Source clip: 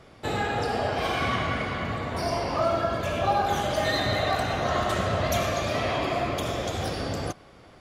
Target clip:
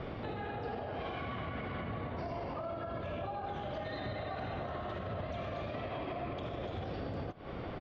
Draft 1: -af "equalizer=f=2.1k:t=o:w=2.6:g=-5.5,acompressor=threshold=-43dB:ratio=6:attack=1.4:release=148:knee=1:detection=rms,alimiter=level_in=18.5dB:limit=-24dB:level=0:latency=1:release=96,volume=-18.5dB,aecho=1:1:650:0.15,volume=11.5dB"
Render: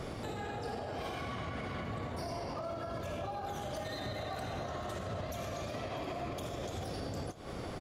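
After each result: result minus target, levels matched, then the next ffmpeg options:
echo-to-direct +10 dB; 4000 Hz band +4.0 dB
-af "equalizer=f=2.1k:t=o:w=2.6:g=-5.5,acompressor=threshold=-43dB:ratio=6:attack=1.4:release=148:knee=1:detection=rms,alimiter=level_in=18.5dB:limit=-24dB:level=0:latency=1:release=96,volume=-18.5dB,aecho=1:1:650:0.0473,volume=11.5dB"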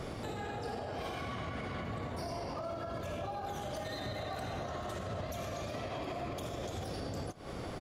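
4000 Hz band +4.0 dB
-af "equalizer=f=2.1k:t=o:w=2.6:g=-5.5,acompressor=threshold=-43dB:ratio=6:attack=1.4:release=148:knee=1:detection=rms,lowpass=f=3.4k:w=0.5412,lowpass=f=3.4k:w=1.3066,alimiter=level_in=18.5dB:limit=-24dB:level=0:latency=1:release=96,volume=-18.5dB,aecho=1:1:650:0.0473,volume=11.5dB"

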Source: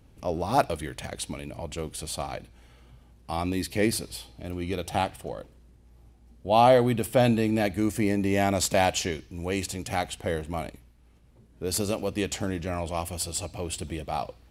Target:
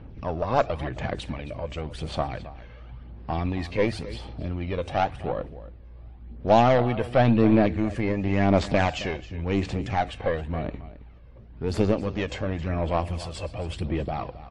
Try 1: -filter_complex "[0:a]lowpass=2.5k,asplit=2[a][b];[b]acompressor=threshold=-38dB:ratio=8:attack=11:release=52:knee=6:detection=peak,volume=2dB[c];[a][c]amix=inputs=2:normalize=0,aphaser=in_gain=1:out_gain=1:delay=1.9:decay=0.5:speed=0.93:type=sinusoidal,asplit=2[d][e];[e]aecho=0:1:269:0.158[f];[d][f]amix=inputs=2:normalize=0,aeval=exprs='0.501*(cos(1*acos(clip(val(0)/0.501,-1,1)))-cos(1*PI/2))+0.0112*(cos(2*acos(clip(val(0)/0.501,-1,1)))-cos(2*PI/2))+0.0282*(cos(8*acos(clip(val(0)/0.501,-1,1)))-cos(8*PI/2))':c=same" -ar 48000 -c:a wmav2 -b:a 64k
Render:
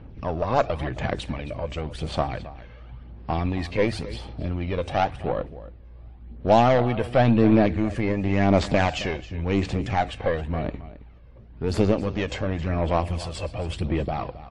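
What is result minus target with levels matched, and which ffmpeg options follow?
compressor: peak gain reduction -8.5 dB
-filter_complex "[0:a]lowpass=2.5k,asplit=2[a][b];[b]acompressor=threshold=-47.5dB:ratio=8:attack=11:release=52:knee=6:detection=peak,volume=2dB[c];[a][c]amix=inputs=2:normalize=0,aphaser=in_gain=1:out_gain=1:delay=1.9:decay=0.5:speed=0.93:type=sinusoidal,asplit=2[d][e];[e]aecho=0:1:269:0.158[f];[d][f]amix=inputs=2:normalize=0,aeval=exprs='0.501*(cos(1*acos(clip(val(0)/0.501,-1,1)))-cos(1*PI/2))+0.0112*(cos(2*acos(clip(val(0)/0.501,-1,1)))-cos(2*PI/2))+0.0282*(cos(8*acos(clip(val(0)/0.501,-1,1)))-cos(8*PI/2))':c=same" -ar 48000 -c:a wmav2 -b:a 64k

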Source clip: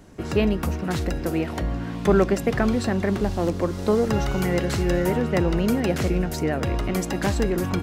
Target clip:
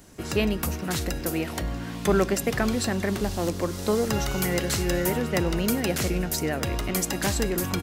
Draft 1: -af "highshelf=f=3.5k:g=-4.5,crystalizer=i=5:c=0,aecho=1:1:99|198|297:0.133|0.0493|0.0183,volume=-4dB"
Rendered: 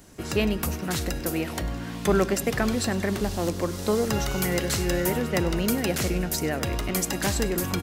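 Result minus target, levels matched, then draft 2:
echo-to-direct +6.5 dB
-af "highshelf=f=3.5k:g=-4.5,crystalizer=i=5:c=0,aecho=1:1:99|198:0.0631|0.0233,volume=-4dB"

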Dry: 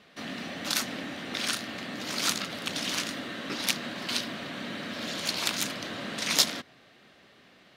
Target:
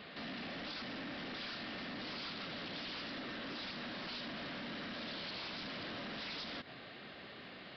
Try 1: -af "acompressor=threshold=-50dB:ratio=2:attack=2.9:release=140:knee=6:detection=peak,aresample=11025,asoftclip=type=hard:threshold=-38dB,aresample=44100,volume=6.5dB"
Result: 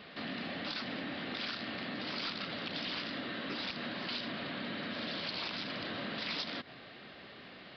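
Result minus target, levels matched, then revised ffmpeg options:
hard clip: distortion -10 dB
-af "acompressor=threshold=-50dB:ratio=2:attack=2.9:release=140:knee=6:detection=peak,aresample=11025,asoftclip=type=hard:threshold=-48.5dB,aresample=44100,volume=6.5dB"

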